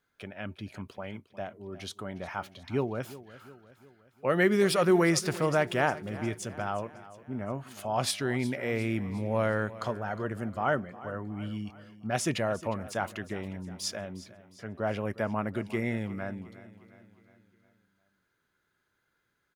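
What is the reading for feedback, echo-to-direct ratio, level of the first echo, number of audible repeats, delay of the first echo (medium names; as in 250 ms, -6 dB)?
52%, -15.5 dB, -17.0 dB, 4, 358 ms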